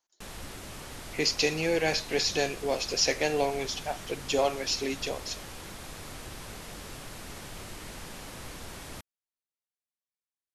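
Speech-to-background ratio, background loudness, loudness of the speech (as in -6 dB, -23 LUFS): 14.0 dB, -42.5 LUFS, -28.5 LUFS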